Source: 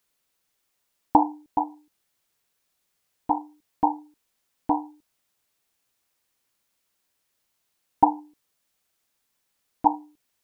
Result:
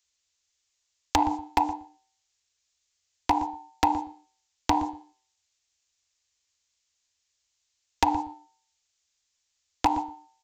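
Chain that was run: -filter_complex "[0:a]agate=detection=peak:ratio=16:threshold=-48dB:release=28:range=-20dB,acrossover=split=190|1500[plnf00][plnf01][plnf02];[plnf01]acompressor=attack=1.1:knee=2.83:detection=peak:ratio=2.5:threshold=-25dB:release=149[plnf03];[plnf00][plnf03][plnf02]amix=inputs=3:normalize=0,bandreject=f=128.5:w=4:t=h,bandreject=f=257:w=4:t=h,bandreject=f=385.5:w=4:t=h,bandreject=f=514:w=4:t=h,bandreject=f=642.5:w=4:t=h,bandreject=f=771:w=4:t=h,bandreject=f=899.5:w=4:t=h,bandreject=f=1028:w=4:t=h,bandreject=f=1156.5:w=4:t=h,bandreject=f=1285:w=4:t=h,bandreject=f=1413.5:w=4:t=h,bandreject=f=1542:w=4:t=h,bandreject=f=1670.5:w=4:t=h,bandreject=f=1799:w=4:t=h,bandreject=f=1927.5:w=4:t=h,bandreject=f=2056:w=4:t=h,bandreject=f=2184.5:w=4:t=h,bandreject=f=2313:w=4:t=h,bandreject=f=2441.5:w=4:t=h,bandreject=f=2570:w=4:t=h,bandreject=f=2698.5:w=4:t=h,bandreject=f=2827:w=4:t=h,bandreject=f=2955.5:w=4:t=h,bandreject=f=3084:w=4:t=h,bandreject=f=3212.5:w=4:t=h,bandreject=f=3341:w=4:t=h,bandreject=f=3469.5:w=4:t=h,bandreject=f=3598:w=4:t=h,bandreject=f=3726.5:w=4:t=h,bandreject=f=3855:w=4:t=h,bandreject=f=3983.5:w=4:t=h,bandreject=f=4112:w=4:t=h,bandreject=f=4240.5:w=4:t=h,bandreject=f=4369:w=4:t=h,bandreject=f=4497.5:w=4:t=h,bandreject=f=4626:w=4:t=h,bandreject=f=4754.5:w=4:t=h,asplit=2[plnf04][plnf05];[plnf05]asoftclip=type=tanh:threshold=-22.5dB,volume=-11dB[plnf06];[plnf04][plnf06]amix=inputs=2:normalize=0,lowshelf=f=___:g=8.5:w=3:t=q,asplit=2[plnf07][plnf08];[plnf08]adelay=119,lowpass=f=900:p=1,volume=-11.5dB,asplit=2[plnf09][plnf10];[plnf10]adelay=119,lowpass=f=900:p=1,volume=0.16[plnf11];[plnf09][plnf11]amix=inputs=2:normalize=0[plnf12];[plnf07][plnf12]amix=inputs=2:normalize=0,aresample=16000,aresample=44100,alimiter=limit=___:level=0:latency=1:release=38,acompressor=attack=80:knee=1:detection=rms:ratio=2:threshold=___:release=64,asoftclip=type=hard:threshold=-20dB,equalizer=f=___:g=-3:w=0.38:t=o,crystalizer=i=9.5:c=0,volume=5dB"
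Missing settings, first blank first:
110, -14.5dB, -34dB, 1400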